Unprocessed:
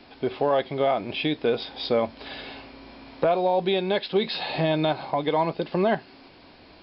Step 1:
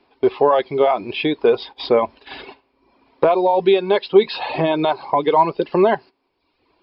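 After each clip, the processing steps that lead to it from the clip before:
noise gate −38 dBFS, range −16 dB
reverb reduction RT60 0.84 s
graphic EQ with 15 bands 400 Hz +10 dB, 1,000 Hz +10 dB, 2,500 Hz +4 dB
level +1.5 dB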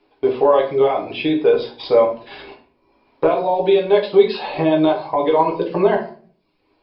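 convolution reverb RT60 0.45 s, pre-delay 6 ms, DRR −0.5 dB
level −4.5 dB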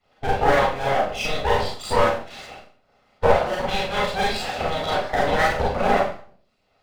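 lower of the sound and its delayed copy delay 1.5 ms
harmonic and percussive parts rebalanced harmonic −18 dB
four-comb reverb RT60 0.38 s, combs from 30 ms, DRR −4.5 dB

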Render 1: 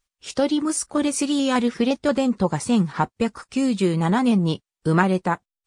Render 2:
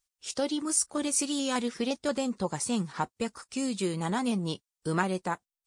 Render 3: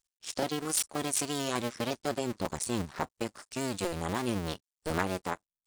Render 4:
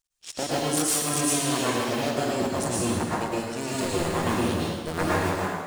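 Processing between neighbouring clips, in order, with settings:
bass and treble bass −4 dB, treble +9 dB; level −8.5 dB
sub-harmonics by changed cycles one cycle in 2, muted
dense smooth reverb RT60 1.4 s, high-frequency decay 0.85×, pre-delay 95 ms, DRR −7 dB

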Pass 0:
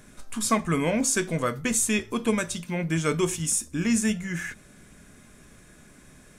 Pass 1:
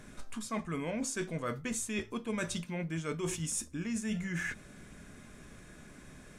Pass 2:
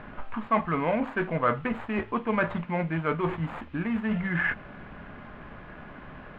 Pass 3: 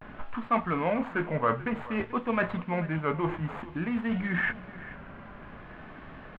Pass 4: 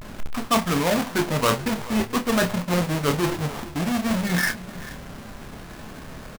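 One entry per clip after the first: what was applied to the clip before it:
high-shelf EQ 8,100 Hz −9.5 dB; reversed playback; downward compressor 12 to 1, threshold −32 dBFS, peak gain reduction 16 dB; reversed playback
running median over 15 samples; drawn EQ curve 400 Hz 0 dB, 870 Hz +11 dB, 3,000 Hz +3 dB, 5,600 Hz −30 dB; noise in a band 780–3,000 Hz −68 dBFS; level +7 dB
pitch vibrato 0.54 Hz 85 cents; single-tap delay 437 ms −17 dB; level −1.5 dB
each half-wave held at its own peak; double-tracking delay 28 ms −9 dB; level +1.5 dB

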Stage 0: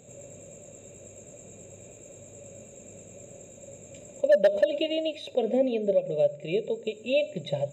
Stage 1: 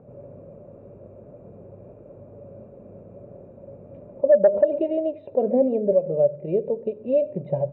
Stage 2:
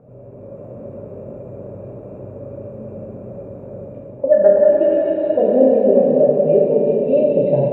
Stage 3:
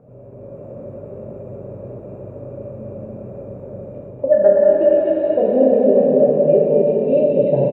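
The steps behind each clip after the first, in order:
Chebyshev low-pass filter 1,200 Hz, order 3; level +5.5 dB
dense smooth reverb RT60 4.8 s, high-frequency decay 1×, pre-delay 0 ms, DRR −5 dB; automatic gain control gain up to 5.5 dB
single-tap delay 245 ms −6.5 dB; level −1 dB

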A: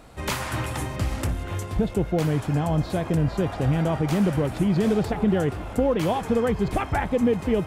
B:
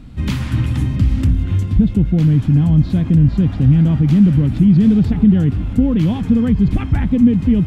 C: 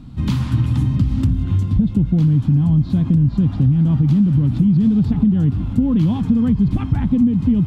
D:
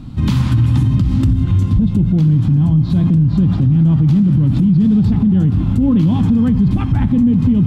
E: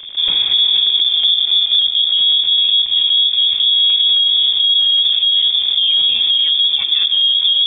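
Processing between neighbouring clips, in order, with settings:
drawn EQ curve 260 Hz 0 dB, 380 Hz −16 dB, 660 Hz −23 dB, 3,300 Hz −12 dB, 8,900 Hz −22 dB; in parallel at −1 dB: brickwall limiter −24.5 dBFS, peak gain reduction 11 dB; on the sum: level +9 dB
octave-band graphic EQ 125/250/500/1,000/2,000/4,000 Hz +7/+5/−3/+7/−5/+4 dB; downward compressor, threshold −7 dBFS, peak gain reduction 7.5 dB; level −4.5 dB
convolution reverb RT60 1.1 s, pre-delay 4 ms, DRR 10 dB; boost into a limiter +11.5 dB; level −5.5 dB
surface crackle 50 per second −18 dBFS; voice inversion scrambler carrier 3,500 Hz; level −2 dB

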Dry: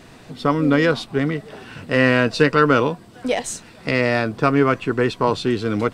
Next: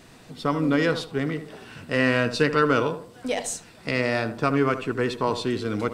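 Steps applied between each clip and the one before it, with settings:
high-shelf EQ 4,800 Hz +6 dB
tape delay 76 ms, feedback 40%, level −9 dB, low-pass 1,400 Hz
level −6 dB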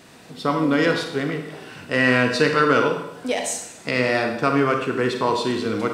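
high-pass filter 160 Hz 6 dB per octave
four-comb reverb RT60 0.77 s, combs from 32 ms, DRR 4.5 dB
level +3 dB

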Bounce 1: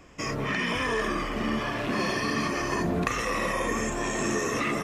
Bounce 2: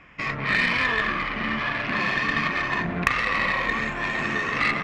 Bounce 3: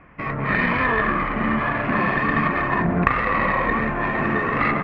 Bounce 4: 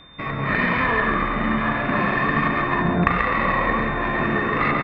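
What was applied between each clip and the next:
drawn EQ curve 100 Hz 0 dB, 150 Hz +5 dB, 400 Hz −4 dB, 2,200 Hz +13 dB, 8,700 Hz −19 dB; harmonic generator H 3 −20 dB, 6 −23 dB, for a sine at −3 dBFS
low-pass filter 1,300 Hz 12 dB per octave; automatic gain control gain up to 3 dB; level +5 dB
steady tone 3,600 Hz −46 dBFS; on a send: single-tap delay 137 ms −6 dB; on the sum: level −1 dB

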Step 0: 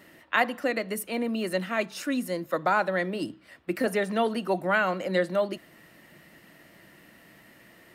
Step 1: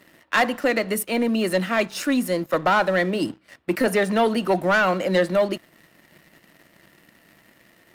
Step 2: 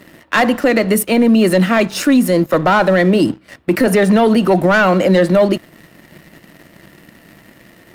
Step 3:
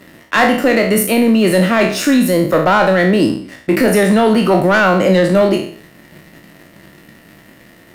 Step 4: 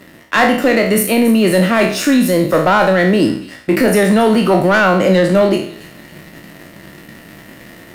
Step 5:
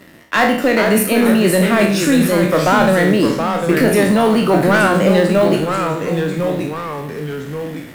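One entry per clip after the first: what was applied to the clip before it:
leveller curve on the samples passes 2
low-shelf EQ 450 Hz +7 dB; brickwall limiter −13.5 dBFS, peak gain reduction 6 dB; level +8.5 dB
peak hold with a decay on every bin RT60 0.54 s; level −1 dB
reversed playback; upward compression, threshold −28 dBFS; reversed playback; delay with a high-pass on its return 279 ms, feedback 44%, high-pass 2,800 Hz, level −14 dB
delay with pitch and tempo change per echo 397 ms, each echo −2 semitones, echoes 2, each echo −6 dB; floating-point word with a short mantissa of 4 bits; level −2 dB

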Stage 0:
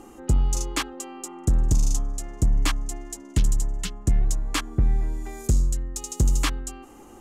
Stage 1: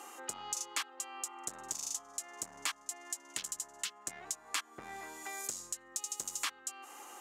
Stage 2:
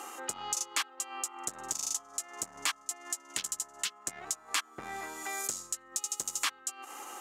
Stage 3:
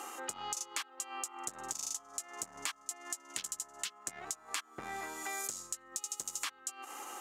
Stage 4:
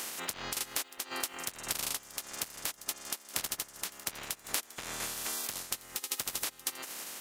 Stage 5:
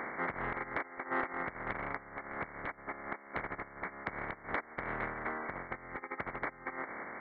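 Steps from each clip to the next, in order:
high-pass filter 950 Hz 12 dB per octave; downward compressor 2.5 to 1, threshold −44 dBFS, peak gain reduction 14 dB; level +4.5 dB
steady tone 1,300 Hz −58 dBFS; transient designer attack −2 dB, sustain −6 dB; level +6 dB
downward compressor 4 to 1, threshold −34 dBFS, peak gain reduction 7 dB; level −1 dB
ceiling on every frequency bin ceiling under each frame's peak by 29 dB; delay with a high-pass on its return 634 ms, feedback 44%, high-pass 3,800 Hz, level −15.5 dB; shaped tremolo saw down 1.8 Hz, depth 45%; level +6 dB
linear-phase brick-wall low-pass 2,300 Hz; saturating transformer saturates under 700 Hz; level +7 dB

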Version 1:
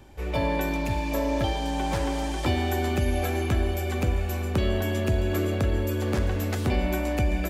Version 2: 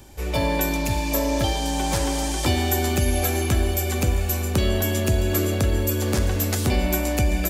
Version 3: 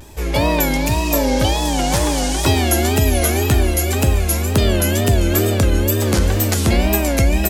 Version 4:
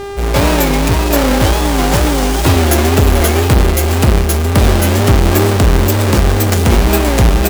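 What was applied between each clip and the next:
bass and treble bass +1 dB, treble +12 dB; level +2.5 dB
tape wow and flutter 150 cents; level +6 dB
each half-wave held at its own peak; hum with harmonics 400 Hz, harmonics 27, −25 dBFS −8 dB per octave

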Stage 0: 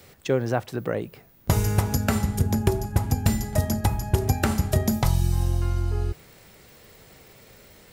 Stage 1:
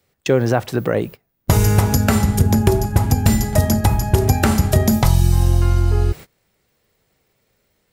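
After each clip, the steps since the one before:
noise gate −39 dBFS, range −25 dB
in parallel at +2 dB: brickwall limiter −16.5 dBFS, peak gain reduction 9 dB
on the sum: level +2.5 dB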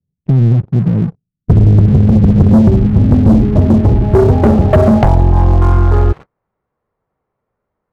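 low-pass filter sweep 170 Hz → 1,100 Hz, 0:02.21–0:05.90
leveller curve on the samples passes 3
level −2 dB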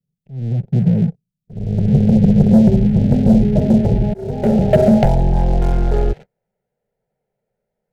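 volume swells 472 ms
phaser with its sweep stopped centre 300 Hz, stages 6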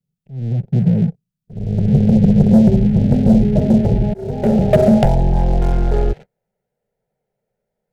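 stylus tracing distortion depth 0.064 ms

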